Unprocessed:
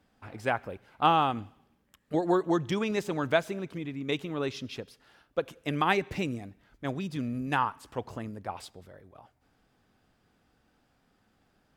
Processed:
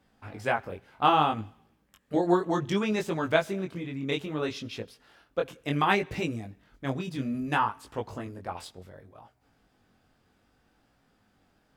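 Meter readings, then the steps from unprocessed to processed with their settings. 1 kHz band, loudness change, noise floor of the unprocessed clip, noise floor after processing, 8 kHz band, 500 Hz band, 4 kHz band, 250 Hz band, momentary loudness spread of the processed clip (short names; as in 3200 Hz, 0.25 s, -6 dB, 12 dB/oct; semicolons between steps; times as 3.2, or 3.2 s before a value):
+1.5 dB, +1.5 dB, -71 dBFS, -69 dBFS, +1.5 dB, +1.0 dB, +1.5 dB, +1.5 dB, 16 LU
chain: chorus 0.64 Hz, delay 18 ms, depth 4.8 ms; gain +4.5 dB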